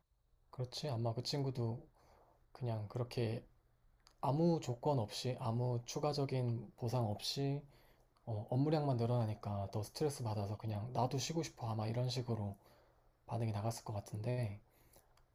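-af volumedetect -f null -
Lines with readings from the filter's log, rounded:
mean_volume: -39.9 dB
max_volume: -22.9 dB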